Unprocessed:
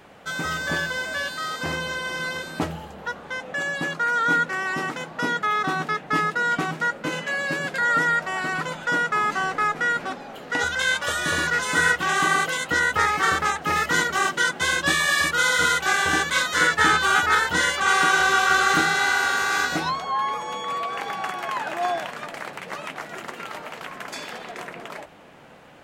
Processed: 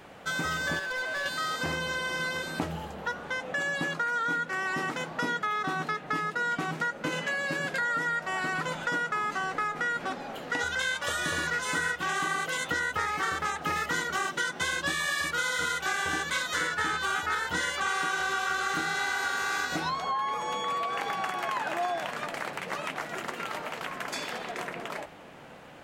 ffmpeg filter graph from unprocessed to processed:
ffmpeg -i in.wav -filter_complex "[0:a]asettb=1/sr,asplit=3[link_01][link_02][link_03];[link_01]atrim=end=0.794[link_04];[link_02]atrim=start=0.79:end=1.26,asetpts=PTS-STARTPTS,afade=type=in:duration=0.004:curve=qsin,afade=type=out:start_time=0.466:duration=0.004:curve=qsin,highpass=400,aemphasis=mode=reproduction:type=75fm,volume=29dB,asoftclip=hard,volume=-29dB[link_05];[link_03]atrim=start=1.256[link_06];[link_04][link_05]acrossfade=duration=0.004:curve1=hsin:curve2=qsin[link_07];[link_07][link_06]acrossfade=duration=0.004:curve1=qsin:curve2=hsin,bandreject=frequency=207.5:width_type=h:width=4,bandreject=frequency=415:width_type=h:width=4,bandreject=frequency=622.5:width_type=h:width=4,bandreject=frequency=830:width_type=h:width=4,bandreject=frequency=1037.5:width_type=h:width=4,bandreject=frequency=1245:width_type=h:width=4,bandreject=frequency=1452.5:width_type=h:width=4,bandreject=frequency=1660:width_type=h:width=4,bandreject=frequency=1867.5:width_type=h:width=4,bandreject=frequency=2075:width_type=h:width=4,bandreject=frequency=2282.5:width_type=h:width=4,bandreject=frequency=2490:width_type=h:width=4,bandreject=frequency=2697.5:width_type=h:width=4,bandreject=frequency=2905:width_type=h:width=4,bandreject=frequency=3112.5:width_type=h:width=4,bandreject=frequency=3320:width_type=h:width=4,bandreject=frequency=3527.5:width_type=h:width=4,bandreject=frequency=3735:width_type=h:width=4,bandreject=frequency=3942.5:width_type=h:width=4,bandreject=frequency=4150:width_type=h:width=4,bandreject=frequency=4357.5:width_type=h:width=4,bandreject=frequency=4565:width_type=h:width=4,bandreject=frequency=4772.5:width_type=h:width=4,bandreject=frequency=4980:width_type=h:width=4,bandreject=frequency=5187.5:width_type=h:width=4,bandreject=frequency=5395:width_type=h:width=4,bandreject=frequency=5602.5:width_type=h:width=4,bandreject=frequency=5810:width_type=h:width=4,bandreject=frequency=6017.5:width_type=h:width=4,bandreject=frequency=6225:width_type=h:width=4,acompressor=threshold=-27dB:ratio=6" out.wav

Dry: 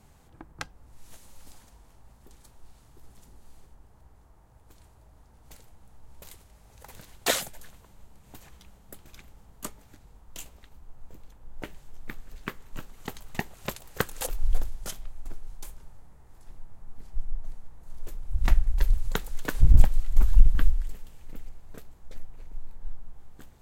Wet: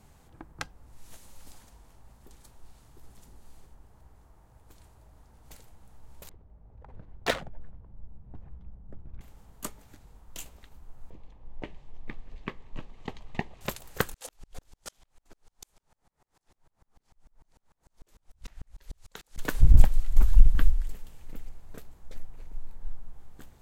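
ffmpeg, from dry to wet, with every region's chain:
ffmpeg -i in.wav -filter_complex "[0:a]asettb=1/sr,asplit=3[link_01][link_02][link_03];[link_01]atrim=end=6.294[link_04];[link_02]atrim=start=6.29:end=9.21,asetpts=PTS-STARTPTS,afade=type=in:duration=0.004:curve=qsin,afade=type=out:start_time=2.916:duration=0.004:curve=qsin,asubboost=boost=3:cutoff=210,adynamicsmooth=sensitivity=2:basefreq=760[link_05];[link_03]atrim=start=9.206[link_06];[link_04][link_05]acrossfade=duration=0.004:curve1=hsin:curve2=qsin[link_07];[link_07][link_06]acrossfade=duration=0.004:curve1=qsin:curve2=hsin,asettb=1/sr,asplit=3[link_08][link_09][link_10];[link_08]atrim=end=11.104[link_11];[link_09]atrim=start=11.1:end=13.61,asetpts=PTS-STARTPTS,afade=type=in:duration=0.004:curve=qsin,afade=type=out:start_time=2.506:duration=0.004:curve=qsin,lowpass=3200,equalizer=frequency=1600:width=3.5:gain=-4.5,bandreject=frequency=1400:width=5.4[link_12];[link_10]atrim=start=13.606[link_13];[link_11][link_12]acrossfade=duration=0.004:curve1=hsin:curve2=qsin[link_14];[link_14][link_13]acrossfade=duration=0.004:curve1=qsin:curve2=hsin,asettb=1/sr,asplit=3[link_15][link_16][link_17];[link_15]atrim=end=14.144[link_18];[link_16]atrim=start=14.14:end=19.38,asetpts=PTS-STARTPTS,afade=type=in:duration=0.004:curve=qsin,afade=type=out:start_time=5.236:duration=0.004:curve=qsin,lowpass=5800,aemphasis=mode=production:type=bsi,aeval=exprs='val(0)*pow(10,-39*if(lt(mod(-6.7*n/s,1),2*abs(-6.7)/1000),1-mod(-6.7*n/s,1)/(2*abs(-6.7)/1000),(mod(-6.7*n/s,1)-2*abs(-6.7)/1000)/(1-2*abs(-6.7)/1000))/20)':channel_layout=same[link_19];[link_17]atrim=start=19.376[link_20];[link_18][link_19]acrossfade=duration=0.004:curve1=hsin:curve2=qsin[link_21];[link_21][link_20]acrossfade=duration=0.004:curve1=qsin:curve2=hsin" out.wav

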